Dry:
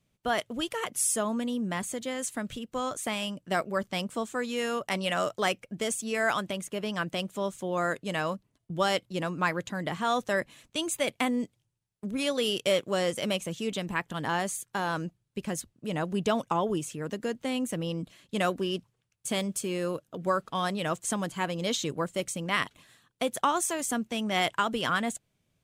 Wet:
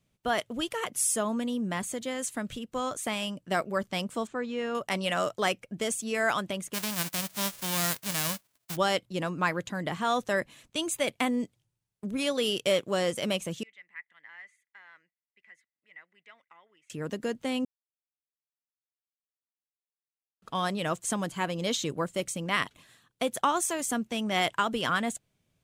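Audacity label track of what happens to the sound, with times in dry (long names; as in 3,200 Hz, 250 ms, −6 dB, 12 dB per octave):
4.270000	4.750000	head-to-tape spacing loss at 10 kHz 22 dB
6.730000	8.750000	spectral envelope flattened exponent 0.1
13.630000	16.900000	resonant band-pass 2,000 Hz, Q 17
17.650000	20.420000	silence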